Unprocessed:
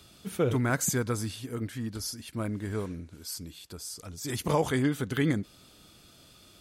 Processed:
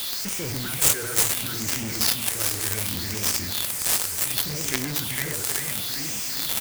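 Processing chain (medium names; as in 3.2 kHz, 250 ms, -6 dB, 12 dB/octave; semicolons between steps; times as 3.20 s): zero-crossing glitches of -27.5 dBFS; in parallel at +1.5 dB: peak limiter -24 dBFS, peak gain reduction 9.5 dB; on the sum: high-pass 65 Hz 24 dB/octave; hum notches 60/120/180/240/300/360/420/480 Hz; feedback delay 389 ms, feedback 59%, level -5 dB; bit crusher 6-bit; treble shelf 10 kHz +5 dB; gain riding 0.5 s; on a send at -16 dB: reverberation RT60 1.1 s, pre-delay 3 ms; on the sum: phase shifter stages 6, 0.69 Hz, lowest notch 210–1100 Hz; graphic EQ 1/2/4/8 kHz -11/+7/+9/+4 dB; companded quantiser 2-bit; trim -4 dB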